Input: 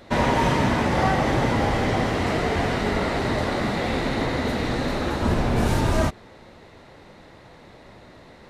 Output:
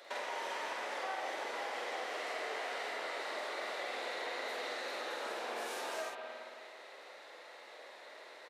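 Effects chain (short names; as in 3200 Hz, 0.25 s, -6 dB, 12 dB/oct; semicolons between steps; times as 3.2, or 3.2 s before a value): HPF 510 Hz 24 dB/oct; bell 880 Hz -4.5 dB 1.3 oct; compressor 4:1, threshold -39 dBFS, peak gain reduction 14 dB; doubler 47 ms -3 dB; on a send: reverb RT60 1.9 s, pre-delay 0.201 s, DRR 5 dB; on the sum: gain -3 dB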